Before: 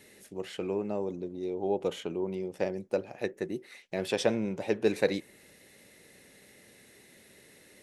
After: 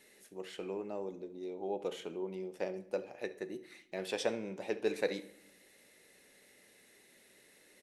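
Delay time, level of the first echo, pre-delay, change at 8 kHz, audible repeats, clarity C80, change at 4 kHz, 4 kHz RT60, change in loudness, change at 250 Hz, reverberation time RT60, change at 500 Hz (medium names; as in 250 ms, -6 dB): 70 ms, -19.0 dB, 16 ms, -5.5 dB, 1, 20.0 dB, -5.5 dB, 0.60 s, -7.0 dB, -9.0 dB, 0.75 s, -6.5 dB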